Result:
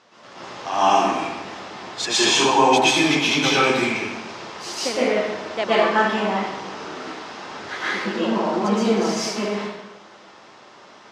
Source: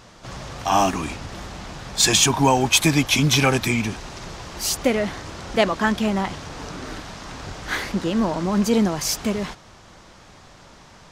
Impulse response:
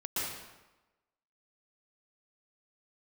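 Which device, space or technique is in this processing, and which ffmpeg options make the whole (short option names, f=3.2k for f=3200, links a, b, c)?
supermarket ceiling speaker: -filter_complex "[0:a]highpass=310,lowpass=5.1k[a];[1:a]atrim=start_sample=2205[b];[a][b]afir=irnorm=-1:irlink=0,volume=-2dB"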